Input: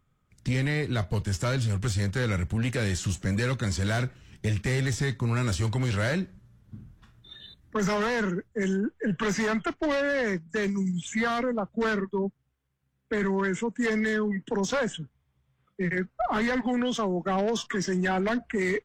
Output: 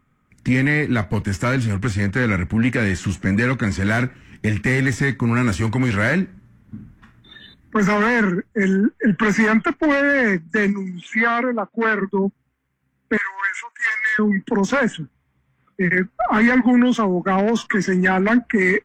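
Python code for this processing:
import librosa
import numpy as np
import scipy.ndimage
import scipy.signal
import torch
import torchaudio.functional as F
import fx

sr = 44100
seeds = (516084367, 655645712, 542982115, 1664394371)

y = fx.high_shelf(x, sr, hz=9000.0, db=-7.5, at=(1.76, 3.9))
y = fx.bandpass_edges(y, sr, low_hz=320.0, high_hz=fx.line((10.72, 4700.0), (12.0, 3500.0)), at=(10.72, 12.0), fade=0.02)
y = fx.highpass(y, sr, hz=1100.0, slope=24, at=(13.17, 14.19))
y = fx.graphic_eq(y, sr, hz=(250, 1000, 2000, 4000), db=(10, 4, 10, -5))
y = y * librosa.db_to_amplitude(3.0)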